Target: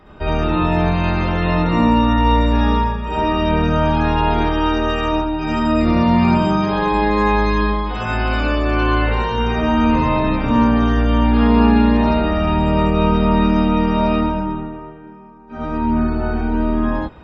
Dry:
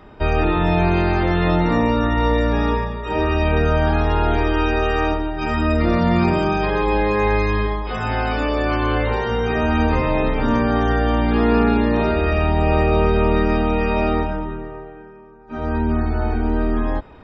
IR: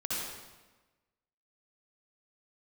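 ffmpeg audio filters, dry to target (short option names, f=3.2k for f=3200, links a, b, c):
-filter_complex "[1:a]atrim=start_sample=2205,atrim=end_sample=3969,asetrate=43218,aresample=44100[a];[0:a][a]afir=irnorm=-1:irlink=0"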